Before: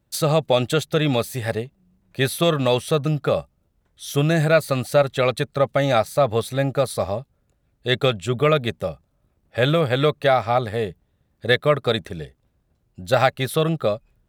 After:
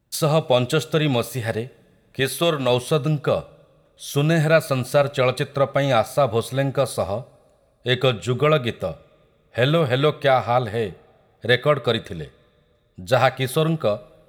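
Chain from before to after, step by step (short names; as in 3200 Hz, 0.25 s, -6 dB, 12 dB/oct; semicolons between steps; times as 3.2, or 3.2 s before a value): 2.2–2.7 low shelf 140 Hz -10.5 dB; two-slope reverb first 0.49 s, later 2.7 s, from -20 dB, DRR 15 dB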